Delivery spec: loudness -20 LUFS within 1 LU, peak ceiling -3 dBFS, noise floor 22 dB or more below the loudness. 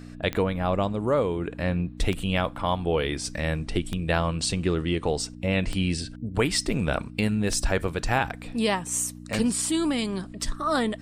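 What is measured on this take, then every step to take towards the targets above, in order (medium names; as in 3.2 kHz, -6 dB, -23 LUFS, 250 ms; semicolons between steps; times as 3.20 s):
clicks found 6; hum 60 Hz; highest harmonic 300 Hz; hum level -40 dBFS; loudness -26.5 LUFS; peak level -8.5 dBFS; loudness target -20.0 LUFS
-> de-click; de-hum 60 Hz, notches 5; trim +6.5 dB; peak limiter -3 dBFS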